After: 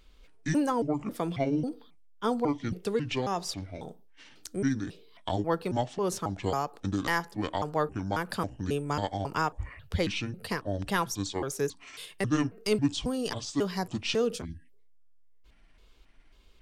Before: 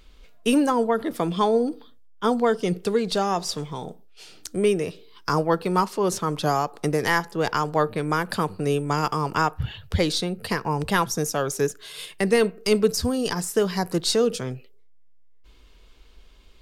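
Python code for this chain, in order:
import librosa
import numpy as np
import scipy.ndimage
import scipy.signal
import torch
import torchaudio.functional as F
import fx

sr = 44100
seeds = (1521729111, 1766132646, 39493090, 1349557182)

y = fx.pitch_trill(x, sr, semitones=-7.5, every_ms=272)
y = fx.spec_erase(y, sr, start_s=14.45, length_s=0.26, low_hz=340.0, high_hz=1600.0)
y = y * 10.0 ** (-6.5 / 20.0)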